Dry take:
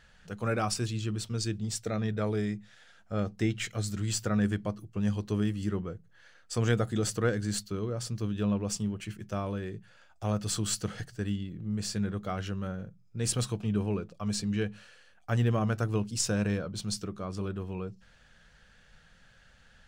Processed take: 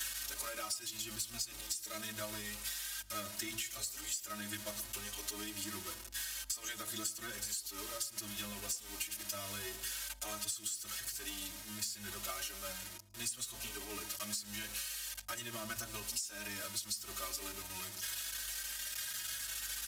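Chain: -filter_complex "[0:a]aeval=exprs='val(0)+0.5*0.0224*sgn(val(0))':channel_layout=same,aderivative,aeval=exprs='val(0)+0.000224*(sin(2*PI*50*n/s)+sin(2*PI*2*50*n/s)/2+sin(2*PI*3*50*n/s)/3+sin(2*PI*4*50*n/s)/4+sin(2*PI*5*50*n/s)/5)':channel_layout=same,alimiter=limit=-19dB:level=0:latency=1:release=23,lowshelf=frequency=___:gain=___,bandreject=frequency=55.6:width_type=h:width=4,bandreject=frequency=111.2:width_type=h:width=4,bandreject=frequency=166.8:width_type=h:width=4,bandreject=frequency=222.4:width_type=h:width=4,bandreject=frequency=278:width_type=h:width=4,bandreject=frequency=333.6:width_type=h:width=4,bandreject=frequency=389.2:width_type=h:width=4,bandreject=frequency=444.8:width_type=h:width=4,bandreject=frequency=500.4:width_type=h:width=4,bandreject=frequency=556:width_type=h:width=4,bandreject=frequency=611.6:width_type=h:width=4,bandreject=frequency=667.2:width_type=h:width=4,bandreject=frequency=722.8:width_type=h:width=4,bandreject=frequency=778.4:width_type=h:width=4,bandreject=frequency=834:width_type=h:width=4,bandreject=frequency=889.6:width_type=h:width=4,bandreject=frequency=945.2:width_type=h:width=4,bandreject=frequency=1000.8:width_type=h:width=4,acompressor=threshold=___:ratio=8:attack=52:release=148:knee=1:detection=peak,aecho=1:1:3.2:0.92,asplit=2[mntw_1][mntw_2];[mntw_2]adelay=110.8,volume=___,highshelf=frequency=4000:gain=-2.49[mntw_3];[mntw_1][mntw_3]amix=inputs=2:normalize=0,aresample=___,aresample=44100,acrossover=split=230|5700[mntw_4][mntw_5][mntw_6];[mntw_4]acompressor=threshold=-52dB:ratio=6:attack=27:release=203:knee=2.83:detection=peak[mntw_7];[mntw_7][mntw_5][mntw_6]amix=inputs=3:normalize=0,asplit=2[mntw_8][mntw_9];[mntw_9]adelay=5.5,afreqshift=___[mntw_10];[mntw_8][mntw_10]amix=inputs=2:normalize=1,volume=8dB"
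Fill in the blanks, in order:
180, 9.5, -51dB, -20dB, 32000, 0.82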